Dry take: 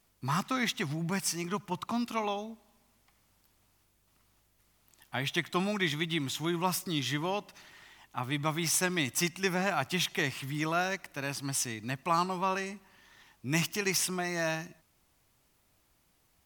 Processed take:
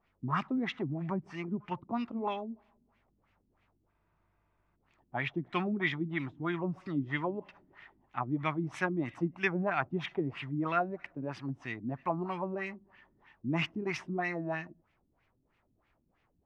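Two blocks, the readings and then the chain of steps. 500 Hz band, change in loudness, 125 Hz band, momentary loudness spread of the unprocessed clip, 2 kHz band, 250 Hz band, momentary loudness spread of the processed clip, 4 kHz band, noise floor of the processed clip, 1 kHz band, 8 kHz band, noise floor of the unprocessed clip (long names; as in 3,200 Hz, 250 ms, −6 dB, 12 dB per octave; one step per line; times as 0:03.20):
−1.5 dB, −3.0 dB, −1.5 dB, 7 LU, −3.0 dB, 0.0 dB, 8 LU, −11.5 dB, −75 dBFS, −3.0 dB, below −25 dB, −70 dBFS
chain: auto-filter low-pass sine 3.1 Hz 250–2,500 Hz
healed spectral selection 0:03.94–0:04.73, 210–8,300 Hz before
level −3 dB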